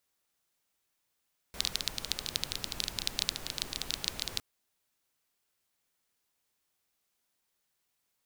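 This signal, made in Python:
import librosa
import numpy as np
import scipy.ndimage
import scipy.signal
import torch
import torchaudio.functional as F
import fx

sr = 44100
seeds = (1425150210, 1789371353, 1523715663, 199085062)

y = fx.rain(sr, seeds[0], length_s=2.86, drops_per_s=15.0, hz=4000.0, bed_db=-7.0)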